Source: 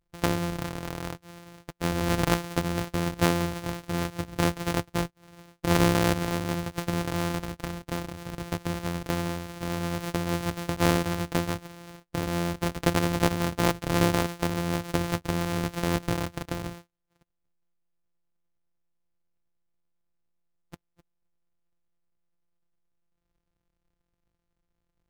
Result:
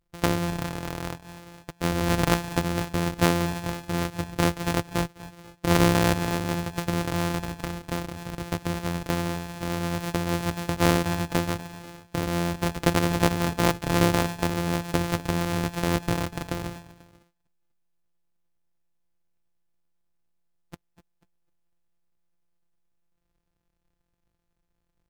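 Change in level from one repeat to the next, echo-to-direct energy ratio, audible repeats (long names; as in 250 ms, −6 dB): −6.5 dB, −16.0 dB, 2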